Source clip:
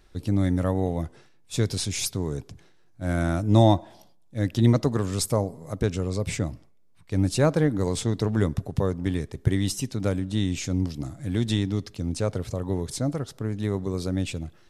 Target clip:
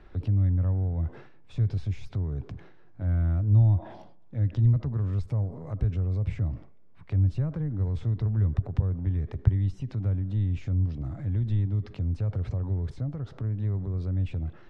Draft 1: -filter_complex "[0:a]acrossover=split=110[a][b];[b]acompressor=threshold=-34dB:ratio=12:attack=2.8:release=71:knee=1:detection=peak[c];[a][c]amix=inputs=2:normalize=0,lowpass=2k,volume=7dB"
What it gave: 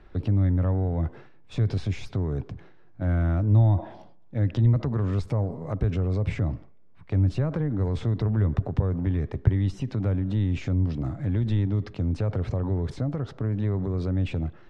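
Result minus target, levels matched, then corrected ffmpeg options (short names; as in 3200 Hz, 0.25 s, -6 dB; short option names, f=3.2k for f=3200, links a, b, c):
compressor: peak gain reduction -10 dB
-filter_complex "[0:a]acrossover=split=110[a][b];[b]acompressor=threshold=-45dB:ratio=12:attack=2.8:release=71:knee=1:detection=peak[c];[a][c]amix=inputs=2:normalize=0,lowpass=2k,volume=7dB"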